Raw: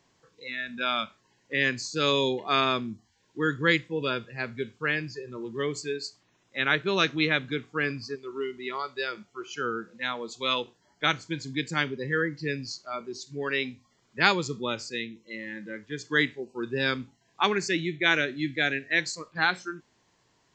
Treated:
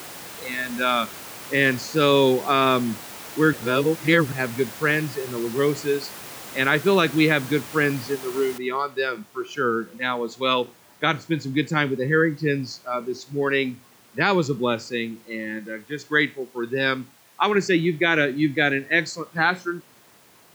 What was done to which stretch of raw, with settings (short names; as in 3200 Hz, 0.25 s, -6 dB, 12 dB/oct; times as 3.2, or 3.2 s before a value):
3.53–4.32 reverse
8.58 noise floor step -40 dB -56 dB
15.59–17.55 low shelf 480 Hz -7 dB
whole clip: HPF 100 Hz; high shelf 2300 Hz -10.5 dB; maximiser +14.5 dB; gain -5 dB